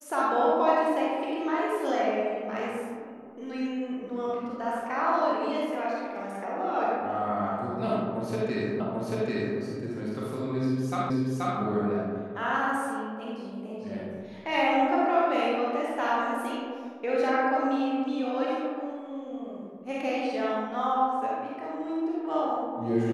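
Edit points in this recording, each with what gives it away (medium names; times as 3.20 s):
8.80 s: repeat of the last 0.79 s
11.10 s: repeat of the last 0.48 s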